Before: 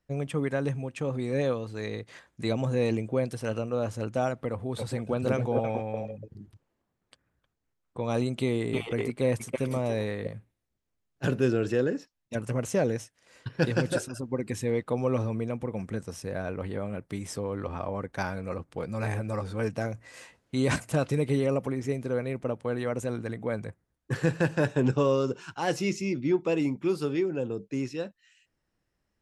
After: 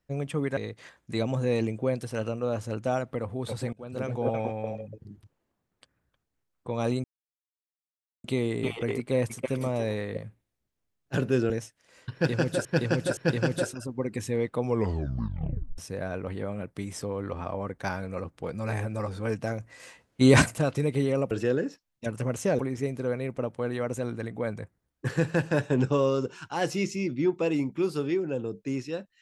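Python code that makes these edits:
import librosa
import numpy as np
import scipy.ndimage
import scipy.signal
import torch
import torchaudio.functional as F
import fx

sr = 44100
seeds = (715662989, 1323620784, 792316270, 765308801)

y = fx.edit(x, sr, fx.cut(start_s=0.57, length_s=1.3),
    fx.fade_in_from(start_s=5.03, length_s=0.59, floor_db=-23.5),
    fx.insert_silence(at_s=8.34, length_s=1.2),
    fx.move(start_s=11.6, length_s=1.28, to_s=21.65),
    fx.repeat(start_s=13.51, length_s=0.52, count=3),
    fx.tape_stop(start_s=14.99, length_s=1.13),
    fx.clip_gain(start_s=20.55, length_s=0.33, db=8.5), tone=tone)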